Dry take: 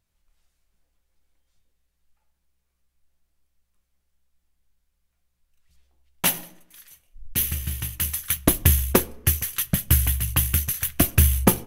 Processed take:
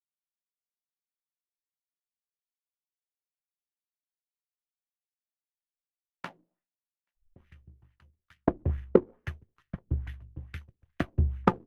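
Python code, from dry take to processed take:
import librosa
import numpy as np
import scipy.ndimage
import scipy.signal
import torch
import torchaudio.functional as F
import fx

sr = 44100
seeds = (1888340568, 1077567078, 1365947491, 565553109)

p1 = x + fx.echo_thinned(x, sr, ms=830, feedback_pct=59, hz=630.0, wet_db=-21.5, dry=0)
p2 = fx.filter_lfo_lowpass(p1, sr, shape='sine', hz=2.3, low_hz=330.0, high_hz=1900.0, q=2.3)
p3 = fx.power_curve(p2, sr, exponent=1.4)
p4 = fx.band_widen(p3, sr, depth_pct=70)
y = p4 * librosa.db_to_amplitude(-9.0)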